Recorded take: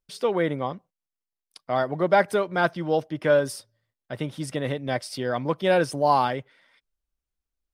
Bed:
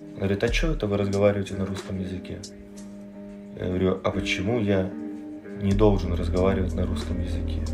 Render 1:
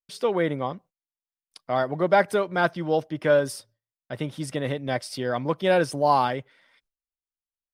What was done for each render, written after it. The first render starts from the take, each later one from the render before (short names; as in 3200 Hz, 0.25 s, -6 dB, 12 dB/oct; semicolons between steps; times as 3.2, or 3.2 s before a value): gate with hold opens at -56 dBFS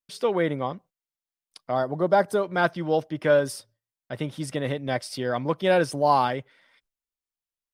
1.71–2.44 bell 2300 Hz -11.5 dB 0.94 oct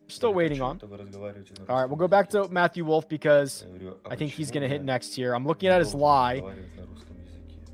add bed -17.5 dB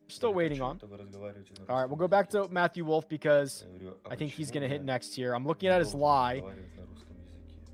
gain -5 dB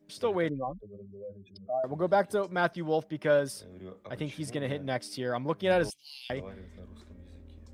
0.49–1.84 spectral contrast raised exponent 2.7; 5.9–6.3 elliptic high-pass 2500 Hz, stop band 50 dB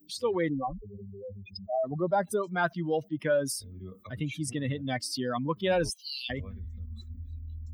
per-bin expansion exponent 2; fast leveller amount 50%